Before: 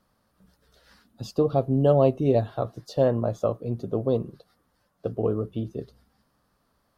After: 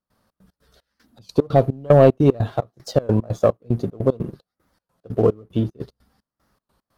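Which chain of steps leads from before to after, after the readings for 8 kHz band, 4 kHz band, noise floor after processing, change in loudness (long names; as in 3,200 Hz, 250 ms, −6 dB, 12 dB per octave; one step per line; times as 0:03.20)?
can't be measured, +5.0 dB, below −85 dBFS, +5.5 dB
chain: leveller curve on the samples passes 1
gate pattern ".xx.x.xx." 150 BPM −24 dB
wow of a warped record 33 1/3 rpm, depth 160 cents
level +5.5 dB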